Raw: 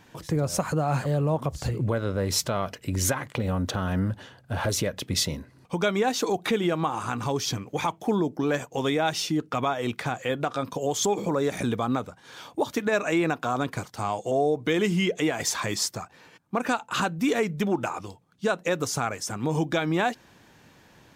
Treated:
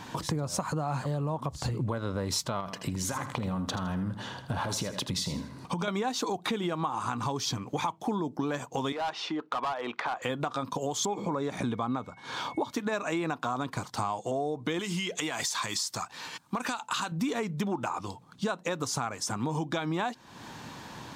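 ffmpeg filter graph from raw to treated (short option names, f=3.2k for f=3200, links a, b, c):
-filter_complex "[0:a]asettb=1/sr,asplit=3[a][b][c];[a]atrim=end=2.604[d];[b]atrim=start=2.6:end=5.88,asetpts=PTS-STARTPTS,afade=t=in:d=0.004:c=qsin,afade=t=out:st=3.276:d=0.004:c=qsin,equalizer=f=180:t=o:w=0.23:g=5.5,acompressor=threshold=-29dB:ratio=3:attack=3.2:release=140:knee=1:detection=peak,aecho=1:1:80|160|240:0.282|0.0817|0.0237,atrim=end_sample=144648[e];[c]atrim=start=5.876[f];[d][e]acrossfade=d=0.004:c1=hsin:c2=qsin[g];[g][f]acrossfade=d=0.004:c1=qsin:c2=hsin,asettb=1/sr,asplit=3[h][i][j];[h]atrim=end=8.924[k];[i]atrim=start=8.92:end=10.22,asetpts=PTS-STARTPTS,afade=t=in:d=0.004:c=qsin,afade=t=out:st=1.296:d=0.004:c=qsin,highpass=510,lowpass=2.3k,asoftclip=type=hard:threshold=-26.5dB[l];[j]atrim=start=10.216[m];[k][l]acrossfade=d=0.004:c1=hsin:c2=qsin[n];[n][m]acrossfade=d=0.004:c1=qsin:c2=hsin,asettb=1/sr,asplit=3[o][p][q];[o]atrim=end=11.054[r];[p]atrim=start=11.05:end=12.72,asetpts=PTS-STARTPTS,afade=t=in:d=0.004:c=qsin,afade=t=out:st=1.666:d=0.004:c=qsin,highshelf=f=5.1k:g=-9,aeval=exprs='val(0)+0.00178*sin(2*PI*2200*n/s)':c=same[s];[q]atrim=start=12.716[t];[r][s]acrossfade=d=0.004:c1=hsin:c2=qsin[u];[u][t]acrossfade=d=0.004:c1=qsin:c2=hsin,asettb=1/sr,asplit=3[v][w][x];[v]atrim=end=14.794[y];[w]atrim=start=14.79:end=17.12,asetpts=PTS-STARTPTS,afade=t=in:d=0.004:c=qsin,afade=t=out:st=2.326:d=0.004:c=qsin,tiltshelf=f=1.4k:g=-6,acompressor=threshold=-26dB:ratio=6:attack=3.2:release=140:knee=1:detection=peak[z];[x]atrim=start=17.116[aa];[y][z]acrossfade=d=0.004:c1=hsin:c2=qsin[ab];[ab][aa]acrossfade=d=0.004:c1=qsin:c2=hsin,equalizer=f=125:t=o:w=1:g=5,equalizer=f=250:t=o:w=1:g=6,equalizer=f=1k:t=o:w=1:g=11,equalizer=f=4k:t=o:w=1:g=7,equalizer=f=8k:t=o:w=1:g=5,acompressor=threshold=-36dB:ratio=4,volume=4.5dB"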